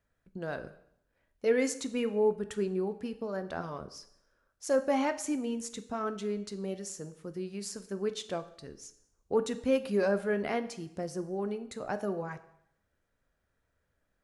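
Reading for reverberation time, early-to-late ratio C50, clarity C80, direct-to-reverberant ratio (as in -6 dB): 0.75 s, 14.5 dB, 17.0 dB, 10.0 dB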